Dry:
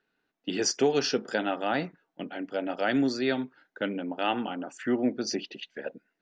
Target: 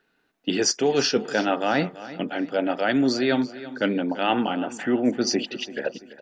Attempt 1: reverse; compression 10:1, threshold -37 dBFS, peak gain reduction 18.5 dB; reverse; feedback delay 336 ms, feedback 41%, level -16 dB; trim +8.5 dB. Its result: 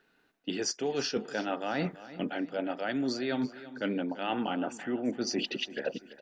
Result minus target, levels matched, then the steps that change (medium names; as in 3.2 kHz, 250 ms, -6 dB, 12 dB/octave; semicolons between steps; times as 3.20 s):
compression: peak gain reduction +10.5 dB
change: compression 10:1, threshold -25.5 dBFS, peak gain reduction 8.5 dB